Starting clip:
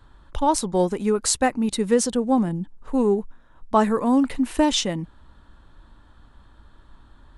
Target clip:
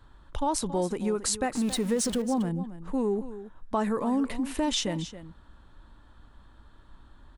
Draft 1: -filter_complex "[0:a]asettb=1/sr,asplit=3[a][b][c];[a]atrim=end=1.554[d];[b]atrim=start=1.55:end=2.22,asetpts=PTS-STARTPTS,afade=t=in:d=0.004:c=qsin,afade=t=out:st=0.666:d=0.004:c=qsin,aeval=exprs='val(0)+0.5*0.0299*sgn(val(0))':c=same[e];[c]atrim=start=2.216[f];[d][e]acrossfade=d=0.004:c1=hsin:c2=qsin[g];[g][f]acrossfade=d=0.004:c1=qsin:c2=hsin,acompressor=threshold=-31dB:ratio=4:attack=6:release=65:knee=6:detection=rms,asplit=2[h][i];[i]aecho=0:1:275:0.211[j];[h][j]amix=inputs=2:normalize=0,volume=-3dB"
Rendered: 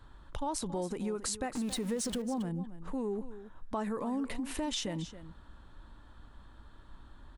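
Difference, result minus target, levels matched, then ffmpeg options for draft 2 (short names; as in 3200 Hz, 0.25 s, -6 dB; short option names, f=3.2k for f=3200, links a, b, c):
compressor: peak gain reduction +8 dB
-filter_complex "[0:a]asettb=1/sr,asplit=3[a][b][c];[a]atrim=end=1.554[d];[b]atrim=start=1.55:end=2.22,asetpts=PTS-STARTPTS,afade=t=in:d=0.004:c=qsin,afade=t=out:st=0.666:d=0.004:c=qsin,aeval=exprs='val(0)+0.5*0.0299*sgn(val(0))':c=same[e];[c]atrim=start=2.216[f];[d][e]acrossfade=d=0.004:c1=hsin:c2=qsin[g];[g][f]acrossfade=d=0.004:c1=qsin:c2=hsin,acompressor=threshold=-20.5dB:ratio=4:attack=6:release=65:knee=6:detection=rms,asplit=2[h][i];[i]aecho=0:1:275:0.211[j];[h][j]amix=inputs=2:normalize=0,volume=-3dB"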